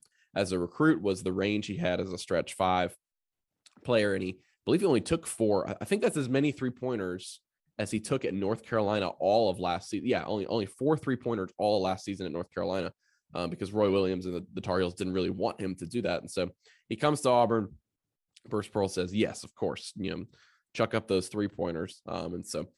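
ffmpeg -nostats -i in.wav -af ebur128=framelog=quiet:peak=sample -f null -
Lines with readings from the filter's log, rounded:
Integrated loudness:
  I:         -30.6 LUFS
  Threshold: -40.9 LUFS
Loudness range:
  LRA:         3.2 LU
  Threshold: -51.0 LUFS
  LRA low:   -32.9 LUFS
  LRA high:  -29.6 LUFS
Sample peak:
  Peak:      -11.4 dBFS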